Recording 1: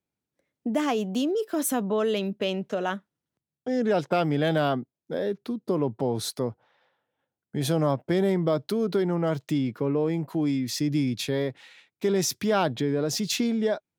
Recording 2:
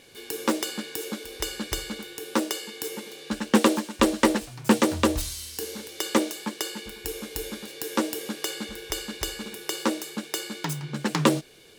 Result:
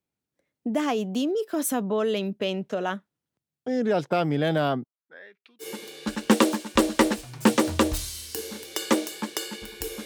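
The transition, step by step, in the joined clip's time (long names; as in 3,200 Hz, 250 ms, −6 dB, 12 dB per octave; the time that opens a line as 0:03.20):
recording 1
0:04.84–0:05.67: LFO wah 0.26 Hz 320–3,000 Hz, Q 4.1
0:05.63: continue with recording 2 from 0:02.87, crossfade 0.08 s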